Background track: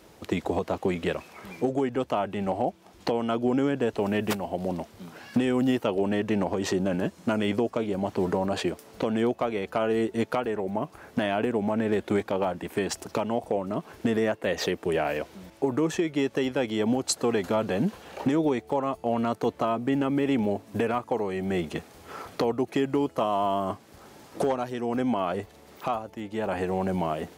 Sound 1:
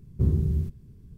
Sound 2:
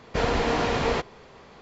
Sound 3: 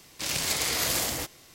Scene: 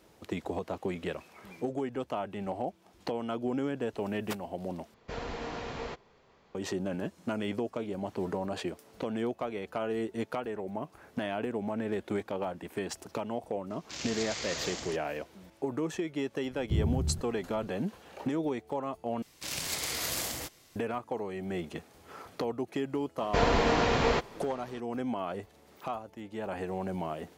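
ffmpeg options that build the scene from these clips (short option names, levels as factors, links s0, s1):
-filter_complex "[2:a]asplit=2[s0][s1];[3:a]asplit=2[s2][s3];[0:a]volume=0.422[s4];[s2]aresample=16000,aresample=44100[s5];[s4]asplit=3[s6][s7][s8];[s6]atrim=end=4.944[s9];[s0]atrim=end=1.61,asetpts=PTS-STARTPTS,volume=0.2[s10];[s7]atrim=start=6.546:end=19.224[s11];[s3]atrim=end=1.54,asetpts=PTS-STARTPTS,volume=0.473[s12];[s8]atrim=start=20.756[s13];[s5]atrim=end=1.54,asetpts=PTS-STARTPTS,volume=0.355,afade=t=in:d=0.004:c=hsin,afade=t=out:st=1.536:d=0.004:c=hsin,adelay=13700[s14];[1:a]atrim=end=1.17,asetpts=PTS-STARTPTS,volume=0.501,afade=t=in:d=0.004:c=hsin,afade=t=out:st=1.166:d=0.004:c=hsin,adelay=16510[s15];[s1]atrim=end=1.61,asetpts=PTS-STARTPTS,volume=0.841,afade=t=in:d=0.004:c=hsin,afade=t=out:st=1.606:d=0.004:c=hsin,adelay=23190[s16];[s9][s10]acrossfade=d=0.004:c1=hsin:c2=hsin[s17];[s17][s11]acrossfade=d=0.004:c1=hsin:c2=hsin[s18];[s18][s12]acrossfade=d=0.004:c1=hsin:c2=hsin[s19];[s19][s13]acrossfade=d=0.004:c1=hsin:c2=hsin[s20];[s20][s14][s15][s16]amix=inputs=4:normalize=0"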